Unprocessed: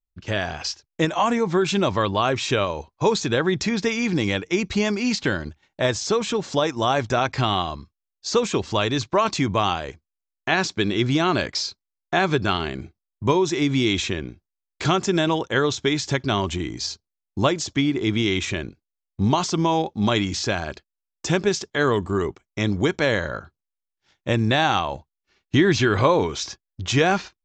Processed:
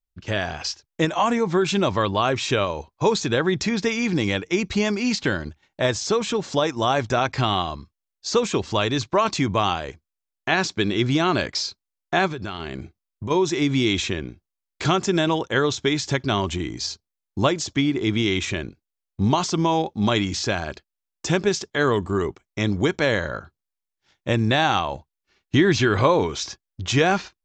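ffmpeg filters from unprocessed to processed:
ffmpeg -i in.wav -filter_complex "[0:a]asplit=3[link_01][link_02][link_03];[link_01]afade=type=out:start_time=12.27:duration=0.02[link_04];[link_02]acompressor=threshold=-26dB:ratio=10:attack=3.2:release=140:knee=1:detection=peak,afade=type=in:start_time=12.27:duration=0.02,afade=type=out:start_time=13.3:duration=0.02[link_05];[link_03]afade=type=in:start_time=13.3:duration=0.02[link_06];[link_04][link_05][link_06]amix=inputs=3:normalize=0" out.wav

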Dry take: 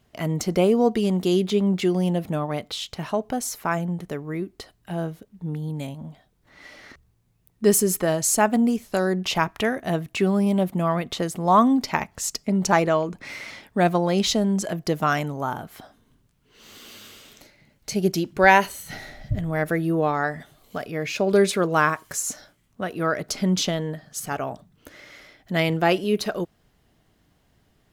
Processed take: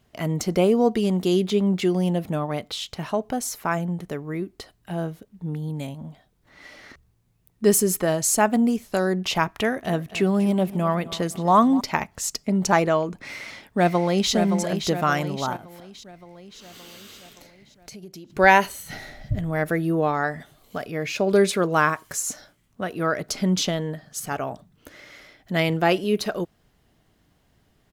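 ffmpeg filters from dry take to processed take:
ffmpeg -i in.wav -filter_complex "[0:a]asettb=1/sr,asplit=3[link_01][link_02][link_03];[link_01]atrim=end=9.484[link_04];[link_02]atrim=start=9.48:end=11.81,asetpts=PTS-STARTPTS,afade=type=in:duration=0.004:curve=qsin,afade=type=out:start_time=2.326:duration=0.004:curve=qsin,aecho=1:1:248|496|744:0.141|0.0537|0.0204,atrim=end_sample=102753[link_05];[link_03]atrim=start=11.806[link_06];[link_04][link_05]acrossfade=duration=0.004:curve1=hsin:curve2=qsin[link_07];[link_07][link_06]acrossfade=duration=0.004:curve1=qsin:curve2=hsin,asplit=2[link_08][link_09];[link_09]afade=type=in:start_time=13.19:duration=0.01,afade=type=out:start_time=14.32:duration=0.01,aecho=0:1:570|1140|1710|2280|2850|3420|3990:0.446684|0.245676|0.135122|0.074317|0.0408743|0.0224809|0.0123645[link_10];[link_08][link_10]amix=inputs=2:normalize=0,asettb=1/sr,asplit=3[link_11][link_12][link_13];[link_11]atrim=end=15.564[link_14];[link_12]atrim=start=15.56:end=18.3,asetpts=PTS-STARTPTS,afade=type=in:duration=0.004:curve=qsin,afade=type=out:start_time=2.736:duration=0.004:curve=qsin,acompressor=threshold=-39dB:ratio=6:attack=3.2:release=140:knee=1:detection=peak[link_15];[link_13]atrim=start=18.296[link_16];[link_14][link_15]acrossfade=duration=0.004:curve1=hsin:curve2=qsin[link_17];[link_17][link_16]acrossfade=duration=0.004:curve1=qsin:curve2=hsin" out.wav

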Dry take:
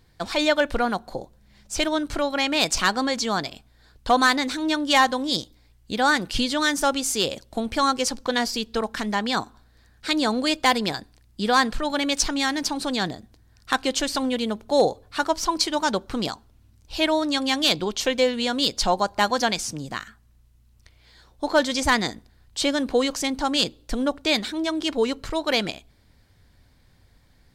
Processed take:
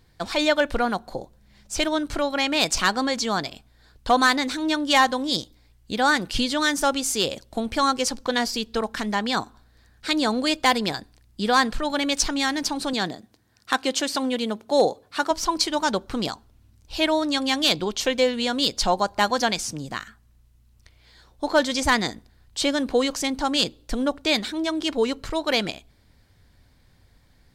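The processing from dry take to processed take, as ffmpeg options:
ffmpeg -i in.wav -filter_complex "[0:a]asettb=1/sr,asplit=3[link_01][link_02][link_03];[link_01]atrim=end=12.934[link_04];[link_02]atrim=start=12.93:end=15.31,asetpts=PTS-STARTPTS,afade=type=in:duration=0.004:curve=qsin,afade=type=out:start_time=2.376:duration=0.004:curve=qsin,highpass=160[link_05];[link_03]atrim=start=15.306[link_06];[link_04][link_05]acrossfade=duration=0.004:curve1=hsin:curve2=qsin[link_07];[link_07][link_06]acrossfade=duration=0.004:curve1=qsin:curve2=hsin" out.wav

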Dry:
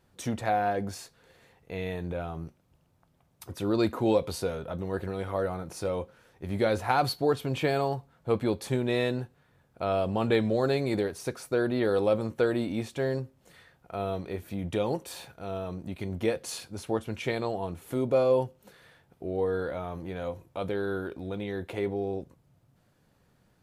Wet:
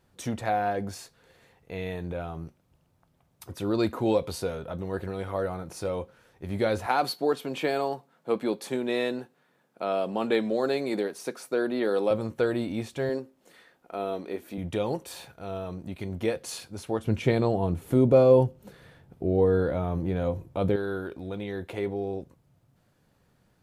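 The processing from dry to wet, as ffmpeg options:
ffmpeg -i in.wav -filter_complex "[0:a]asettb=1/sr,asplit=3[link_01][link_02][link_03];[link_01]atrim=end=6.864[link_04];[link_02]atrim=start=6.86:end=12.11,asetpts=PTS-STARTPTS,afade=type=in:duration=0.004:curve=qsin,afade=type=out:start_time=5.246:duration=0.004:curve=qsin,highpass=frequency=190:width=0.5412,highpass=frequency=190:width=1.3066[link_05];[link_03]atrim=start=12.106[link_06];[link_04][link_05]acrossfade=duration=0.004:curve1=hsin:curve2=qsin[link_07];[link_07][link_06]acrossfade=duration=0.004:curve1=qsin:curve2=hsin,asettb=1/sr,asplit=3[link_08][link_09][link_10];[link_08]atrim=end=13.094[link_11];[link_09]atrim=start=13.09:end=14.58,asetpts=PTS-STARTPTS,afade=type=in:duration=0.004:curve=qsin,afade=type=out:start_time=1.486:duration=0.004:curve=qsin,lowshelf=frequency=170:width_type=q:width=1.5:gain=-14[link_12];[link_10]atrim=start=14.576[link_13];[link_11][link_12]acrossfade=duration=0.004:curve1=hsin:curve2=qsin[link_14];[link_14][link_13]acrossfade=duration=0.004:curve1=qsin:curve2=hsin,asettb=1/sr,asplit=3[link_15][link_16][link_17];[link_15]atrim=end=17.044[link_18];[link_16]atrim=start=17.04:end=20.76,asetpts=PTS-STARTPTS,afade=type=in:duration=0.004:curve=qsin,afade=type=out:start_time=3.716:duration=0.004:curve=qsin,lowshelf=frequency=480:gain=11.5[link_19];[link_17]atrim=start=20.756[link_20];[link_18][link_19]acrossfade=duration=0.004:curve1=hsin:curve2=qsin[link_21];[link_21][link_20]acrossfade=duration=0.004:curve1=qsin:curve2=hsin" out.wav

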